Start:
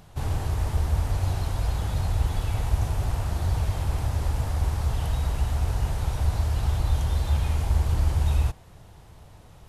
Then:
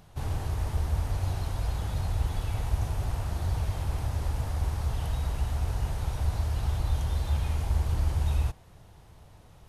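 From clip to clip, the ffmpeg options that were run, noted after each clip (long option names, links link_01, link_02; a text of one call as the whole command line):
ffmpeg -i in.wav -af "bandreject=frequency=7500:width=24,volume=-4dB" out.wav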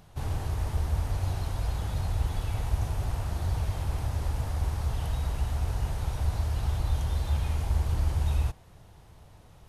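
ffmpeg -i in.wav -af anull out.wav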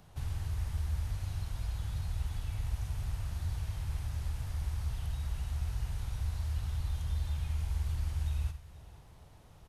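ffmpeg -i in.wav -filter_complex "[0:a]acrossover=split=170|1300[link_01][link_02][link_03];[link_01]acompressor=threshold=-28dB:ratio=4[link_04];[link_02]acompressor=threshold=-57dB:ratio=4[link_05];[link_03]acompressor=threshold=-49dB:ratio=4[link_06];[link_04][link_05][link_06]amix=inputs=3:normalize=0,aecho=1:1:51|92|479:0.266|0.2|0.119,volume=-3.5dB" out.wav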